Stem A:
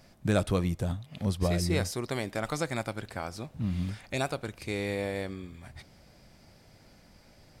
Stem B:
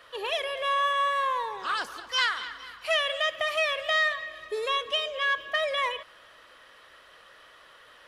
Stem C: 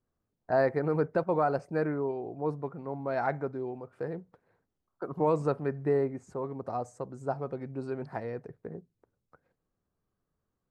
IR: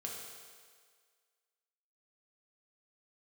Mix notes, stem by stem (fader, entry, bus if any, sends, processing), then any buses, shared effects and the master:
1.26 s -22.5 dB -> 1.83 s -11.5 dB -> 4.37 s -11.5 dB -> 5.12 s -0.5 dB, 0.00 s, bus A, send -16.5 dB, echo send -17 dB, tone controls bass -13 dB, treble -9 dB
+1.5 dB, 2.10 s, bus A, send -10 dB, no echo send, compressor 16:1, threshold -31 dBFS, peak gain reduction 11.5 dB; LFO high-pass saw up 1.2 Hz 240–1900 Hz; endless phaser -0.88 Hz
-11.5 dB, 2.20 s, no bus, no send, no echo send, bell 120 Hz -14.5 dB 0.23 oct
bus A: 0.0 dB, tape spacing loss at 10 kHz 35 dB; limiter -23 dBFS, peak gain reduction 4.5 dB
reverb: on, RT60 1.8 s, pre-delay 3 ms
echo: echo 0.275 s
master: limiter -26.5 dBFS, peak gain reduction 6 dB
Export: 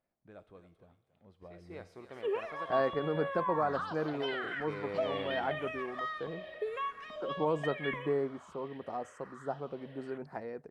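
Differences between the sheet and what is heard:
stem B: send -10 dB -> -19 dB; stem C -11.5 dB -> -4.5 dB; master: missing limiter -26.5 dBFS, peak gain reduction 6 dB

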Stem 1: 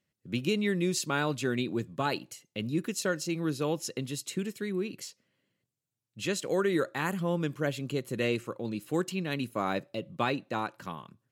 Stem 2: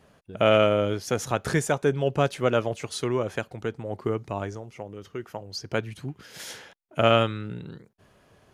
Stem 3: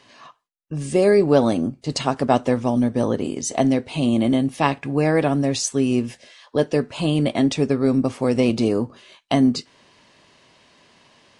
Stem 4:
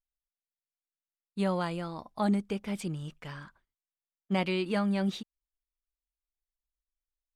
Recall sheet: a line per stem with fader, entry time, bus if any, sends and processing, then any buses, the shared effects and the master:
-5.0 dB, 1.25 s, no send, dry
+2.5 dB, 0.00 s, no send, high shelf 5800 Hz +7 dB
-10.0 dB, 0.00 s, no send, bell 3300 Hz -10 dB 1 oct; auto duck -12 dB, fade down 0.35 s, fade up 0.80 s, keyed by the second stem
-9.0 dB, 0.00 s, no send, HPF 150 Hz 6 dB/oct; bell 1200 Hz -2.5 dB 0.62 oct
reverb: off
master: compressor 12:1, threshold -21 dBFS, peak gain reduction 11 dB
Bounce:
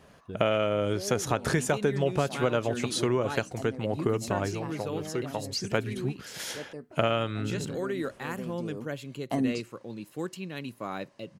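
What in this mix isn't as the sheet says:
stem 2: missing high shelf 5800 Hz +7 dB; stem 4 -9.0 dB -> -19.5 dB

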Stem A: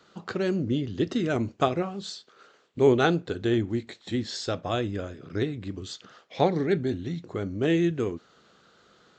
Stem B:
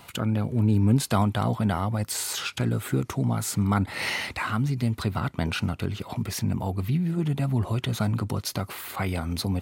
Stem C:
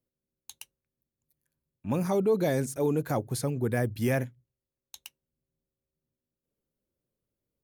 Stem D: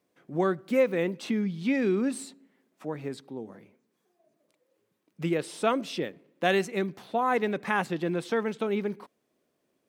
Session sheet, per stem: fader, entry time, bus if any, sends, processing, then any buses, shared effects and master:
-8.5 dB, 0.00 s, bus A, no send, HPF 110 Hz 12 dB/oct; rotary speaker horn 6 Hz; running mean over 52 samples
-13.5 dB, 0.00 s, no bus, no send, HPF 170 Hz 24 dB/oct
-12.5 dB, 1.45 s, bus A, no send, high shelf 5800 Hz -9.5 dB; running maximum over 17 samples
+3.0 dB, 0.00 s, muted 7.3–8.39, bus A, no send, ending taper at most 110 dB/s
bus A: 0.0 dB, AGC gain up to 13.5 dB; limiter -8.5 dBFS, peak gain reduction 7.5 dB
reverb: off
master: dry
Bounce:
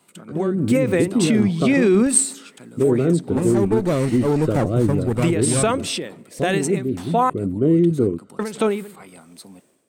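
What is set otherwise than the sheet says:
stem A -8.5 dB -> +2.0 dB; stem C -12.5 dB -> -5.0 dB; master: extra bell 8400 Hz +13.5 dB 0.4 oct

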